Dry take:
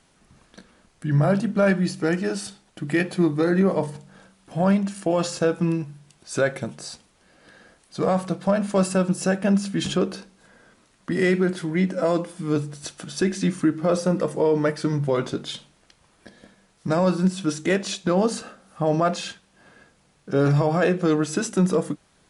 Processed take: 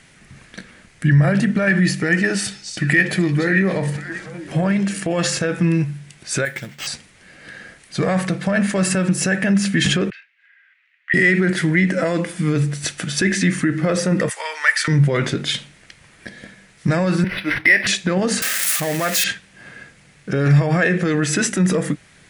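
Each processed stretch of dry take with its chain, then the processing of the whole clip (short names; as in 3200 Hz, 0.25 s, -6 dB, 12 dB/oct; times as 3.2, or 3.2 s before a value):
2.21–5.07 compressor 2.5:1, threshold -26 dBFS + delay with a stepping band-pass 0.289 s, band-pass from 5200 Hz, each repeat -1.4 oct, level -4 dB
6.45–6.87 pre-emphasis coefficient 0.8 + careless resampling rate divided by 4×, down none, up hold
10.1–11.14 Butterworth band-pass 2200 Hz, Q 1.7 + upward expander, over -54 dBFS
14.29–14.88 HPF 900 Hz 24 dB/oct + tilt +2 dB/oct
17.24–17.87 speaker cabinet 430–9400 Hz, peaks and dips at 450 Hz -10 dB, 1300 Hz -10 dB, 2100 Hz +9 dB + decimation joined by straight lines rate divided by 6×
18.42–19.24 switching spikes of -17.5 dBFS + HPF 310 Hz 6 dB/oct
whole clip: dynamic EQ 1800 Hz, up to +6 dB, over -49 dBFS, Q 5.8; limiter -19 dBFS; graphic EQ 125/1000/2000/8000 Hz +7/-5/+12/+3 dB; gain +7 dB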